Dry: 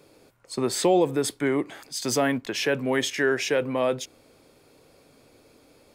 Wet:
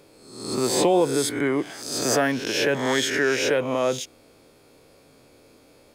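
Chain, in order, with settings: spectral swells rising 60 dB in 0.76 s

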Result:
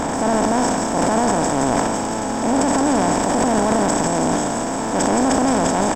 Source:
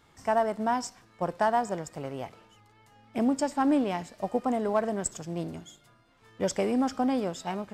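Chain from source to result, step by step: per-bin compression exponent 0.2; tempo 1.3×; transient shaper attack -5 dB, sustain +10 dB; low shelf 130 Hz +11 dB; thin delay 0.17 s, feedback 68%, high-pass 4100 Hz, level -4 dB

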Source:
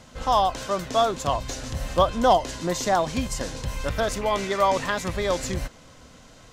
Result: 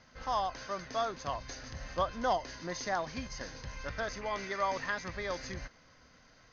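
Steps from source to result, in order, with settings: rippled Chebyshev low-pass 6500 Hz, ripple 9 dB; gain -5 dB

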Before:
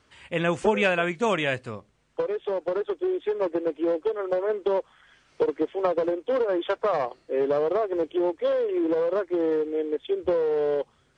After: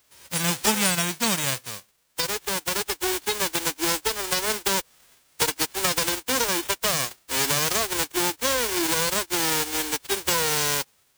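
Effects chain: spectral whitening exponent 0.1

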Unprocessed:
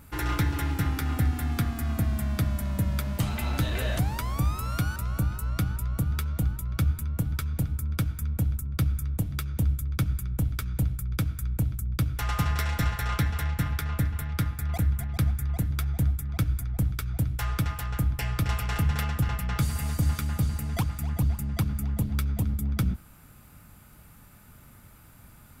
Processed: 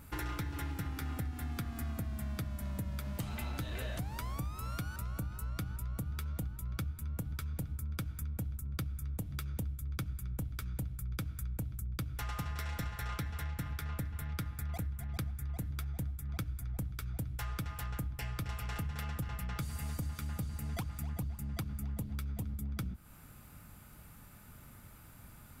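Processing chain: compressor, threshold -33 dBFS, peak gain reduction 12.5 dB; gain -2.5 dB

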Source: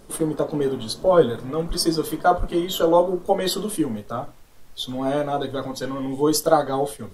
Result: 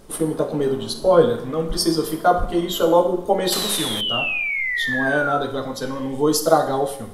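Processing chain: 3.52–5.39 painted sound fall 1300–4200 Hz -25 dBFS; Schroeder reverb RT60 0.72 s, combs from 31 ms, DRR 8.5 dB; 3.52–4.01 spectral compressor 2:1; gain +1 dB

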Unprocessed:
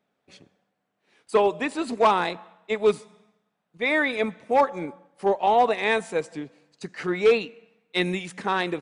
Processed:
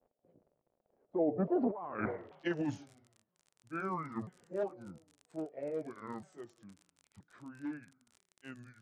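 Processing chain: repeated pitch sweeps -10 st, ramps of 0.858 s; Doppler pass-by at 1.92, 48 m/s, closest 3.6 m; HPF 78 Hz; high shelf 2800 Hz -11.5 dB; negative-ratio compressor -44 dBFS, ratio -1; crackle 43/s -56 dBFS; low-pass sweep 600 Hz -> 8600 Hz, 1.57–2.74; gain +7.5 dB

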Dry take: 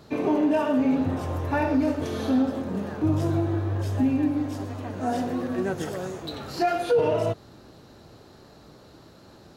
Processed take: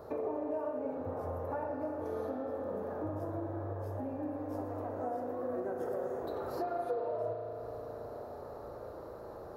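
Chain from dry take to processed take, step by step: EQ curve 100 Hz 0 dB, 160 Hz -9 dB, 320 Hz -2 dB, 500 Hz +11 dB, 770 Hz +6 dB, 1200 Hz +4 dB, 3000 Hz -17 dB, 5300 Hz -11 dB, 8000 Hz -12 dB, 12000 Hz +1 dB; compressor 5:1, threshold -36 dBFS, peak gain reduction 24 dB; on a send: reverb RT60 4.7 s, pre-delay 36 ms, DRR 2 dB; on the sum: gain -1.5 dB

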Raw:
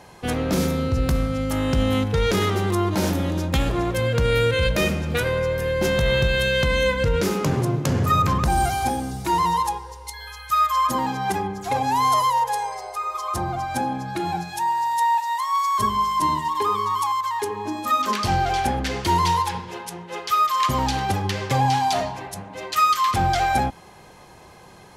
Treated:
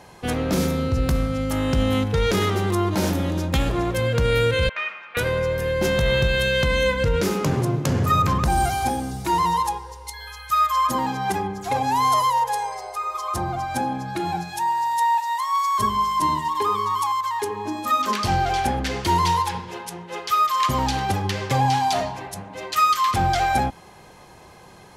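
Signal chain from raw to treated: 4.69–5.17 Chebyshev band-pass 1100–2500 Hz, order 2

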